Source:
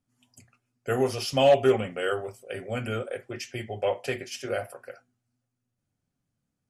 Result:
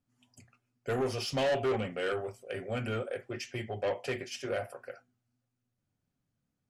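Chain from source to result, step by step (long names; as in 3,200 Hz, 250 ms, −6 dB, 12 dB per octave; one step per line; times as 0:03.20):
high-shelf EQ 9,800 Hz −12 dB
soft clipping −24 dBFS, distortion −6 dB
level −1.5 dB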